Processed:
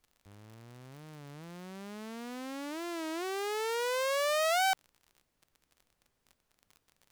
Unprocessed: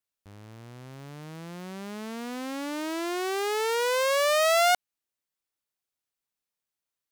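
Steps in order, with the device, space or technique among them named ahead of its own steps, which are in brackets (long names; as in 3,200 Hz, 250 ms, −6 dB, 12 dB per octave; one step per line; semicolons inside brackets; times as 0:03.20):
warped LP (wow of a warped record 33 1/3 rpm, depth 160 cents; surface crackle 40 per second −38 dBFS; pink noise bed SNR 42 dB)
level −6.5 dB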